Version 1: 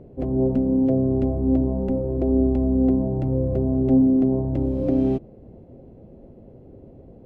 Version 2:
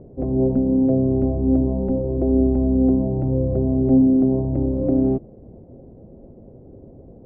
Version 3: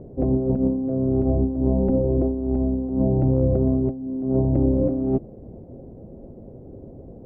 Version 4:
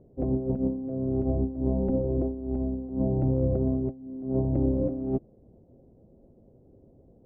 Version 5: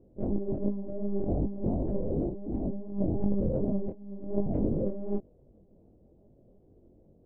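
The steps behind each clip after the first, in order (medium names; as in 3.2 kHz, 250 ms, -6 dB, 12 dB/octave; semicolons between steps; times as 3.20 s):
low-pass 1 kHz 12 dB/octave; trim +2 dB
compressor with a negative ratio -20 dBFS, ratio -0.5
upward expansion 1.5:1, over -38 dBFS; trim -5 dB
monotone LPC vocoder at 8 kHz 200 Hz; chorus 2.7 Hz, delay 19 ms, depth 4.7 ms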